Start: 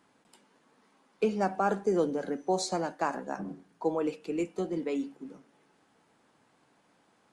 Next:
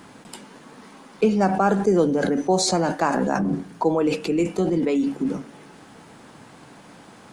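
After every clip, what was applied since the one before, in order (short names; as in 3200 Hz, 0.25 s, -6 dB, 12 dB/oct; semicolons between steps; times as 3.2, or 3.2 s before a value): tone controls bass +6 dB, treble +1 dB; in parallel at +2 dB: negative-ratio compressor -40 dBFS, ratio -1; on the sum: gain +6.5 dB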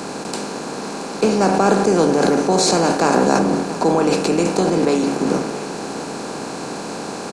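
per-bin compression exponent 0.4; echo 0.677 s -13.5 dB; three-band expander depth 40%; gain -1 dB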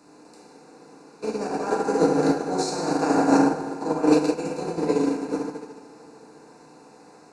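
Butterworth band-stop 3200 Hz, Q 4.4; FDN reverb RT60 2.9 s, low-frequency decay 0.7×, high-frequency decay 0.4×, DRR -4.5 dB; upward expander 2.5:1, over -17 dBFS; gain -8.5 dB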